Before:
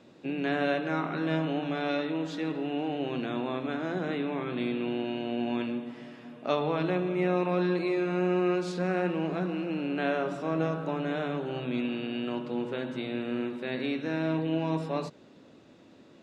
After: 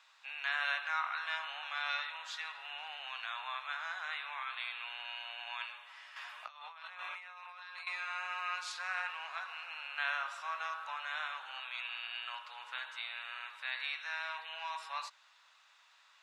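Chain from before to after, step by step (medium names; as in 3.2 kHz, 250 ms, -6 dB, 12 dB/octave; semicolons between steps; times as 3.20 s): steep high-pass 970 Hz 36 dB/octave; 6.16–7.87 s: compressor with a negative ratio -50 dBFS, ratio -1; trim +1 dB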